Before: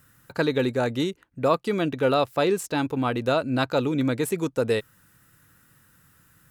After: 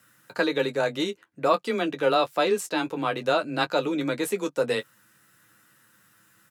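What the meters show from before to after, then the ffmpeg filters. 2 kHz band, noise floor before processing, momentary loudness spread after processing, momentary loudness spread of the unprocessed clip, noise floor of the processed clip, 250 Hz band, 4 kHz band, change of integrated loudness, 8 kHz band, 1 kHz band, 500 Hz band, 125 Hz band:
+1.5 dB, −60 dBFS, 5 LU, 5 LU, −62 dBFS, −4.0 dB, +2.0 dB, −1.0 dB, 0.0 dB, +1.0 dB, −1.0 dB, −9.5 dB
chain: -af "highpass=frequency=350:poles=1,aemphasis=mode=reproduction:type=50kf,aecho=1:1:10|23:0.473|0.178,afreqshift=16,highshelf=frequency=4000:gain=10"

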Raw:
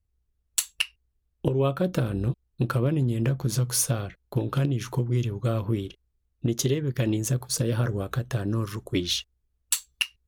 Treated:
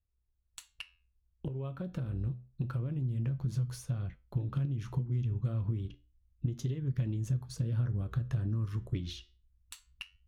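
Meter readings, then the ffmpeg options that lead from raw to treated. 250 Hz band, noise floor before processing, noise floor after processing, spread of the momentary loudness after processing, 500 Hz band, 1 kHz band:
−11.0 dB, −75 dBFS, −77 dBFS, 15 LU, −18.0 dB, −16.0 dB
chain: -af "flanger=delay=10:depth=2.8:regen=-77:speed=0.28:shape=sinusoidal,acompressor=threshold=-33dB:ratio=6,lowpass=frequency=2900:poles=1,asubboost=boost=5:cutoff=190,volume=-4.5dB"

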